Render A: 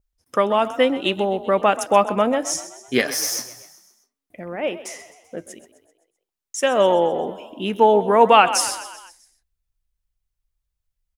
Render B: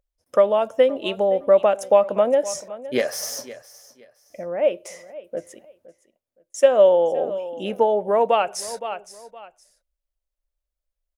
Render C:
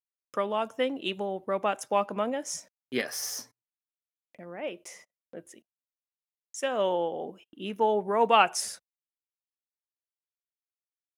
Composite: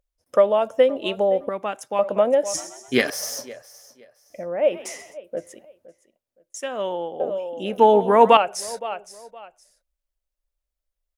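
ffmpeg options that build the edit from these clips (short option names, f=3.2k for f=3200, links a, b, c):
-filter_complex "[2:a]asplit=2[a][b];[0:a]asplit=3[c][d][e];[1:a]asplit=6[f][g][h][i][j][k];[f]atrim=end=1.492[l];[a]atrim=start=1.488:end=1.992[m];[g]atrim=start=1.988:end=2.542[n];[c]atrim=start=2.538:end=3.102[o];[h]atrim=start=3.098:end=4.76[p];[d]atrim=start=4.7:end=5.18[q];[i]atrim=start=5.12:end=6.582[r];[b]atrim=start=6.578:end=7.202[s];[j]atrim=start=7.198:end=7.782[t];[e]atrim=start=7.778:end=8.372[u];[k]atrim=start=8.368[v];[l][m]acrossfade=d=0.004:c1=hsin:c2=hsin[w];[w][n]acrossfade=d=0.004:c1=hsin:c2=hsin[x];[x][o]acrossfade=d=0.004:c1=hsin:c2=hsin[y];[y][p]acrossfade=d=0.004:c1=hsin:c2=hsin[z];[z][q]acrossfade=d=0.06:c1=tri:c2=tri[aa];[aa][r]acrossfade=d=0.06:c1=tri:c2=tri[ab];[ab][s]acrossfade=d=0.004:c1=hsin:c2=hsin[ac];[ac][t]acrossfade=d=0.004:c1=hsin:c2=hsin[ad];[ad][u]acrossfade=d=0.004:c1=hsin:c2=hsin[ae];[ae][v]acrossfade=d=0.004:c1=hsin:c2=hsin"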